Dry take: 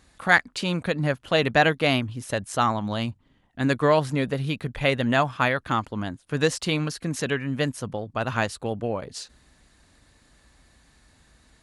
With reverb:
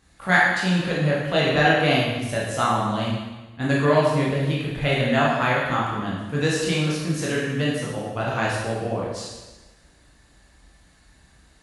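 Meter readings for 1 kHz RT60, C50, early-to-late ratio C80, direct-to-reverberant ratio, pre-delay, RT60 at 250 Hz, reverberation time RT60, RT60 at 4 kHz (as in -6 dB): 1.2 s, 0.0 dB, 2.5 dB, -6.0 dB, 6 ms, 1.2 s, 1.2 s, 1.1 s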